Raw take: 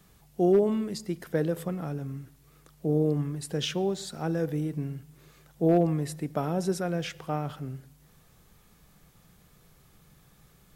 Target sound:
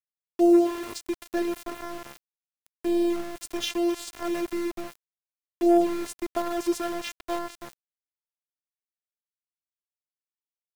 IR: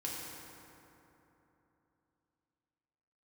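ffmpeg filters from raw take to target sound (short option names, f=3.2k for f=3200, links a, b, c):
-af "afftfilt=real='hypot(re,im)*cos(PI*b)':imag='0':win_size=512:overlap=0.75,aecho=1:1:265|530:0.1|0.031,aeval=exprs='val(0)*gte(abs(val(0)),0.0126)':c=same,volume=5.5dB"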